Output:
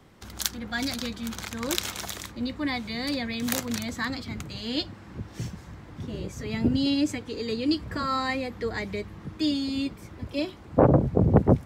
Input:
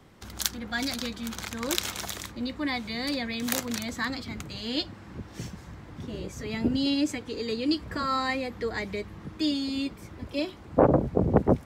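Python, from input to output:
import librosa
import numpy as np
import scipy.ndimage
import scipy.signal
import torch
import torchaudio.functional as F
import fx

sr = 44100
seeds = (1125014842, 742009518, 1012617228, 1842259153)

y = fx.dynamic_eq(x, sr, hz=110.0, q=0.86, threshold_db=-42.0, ratio=4.0, max_db=7)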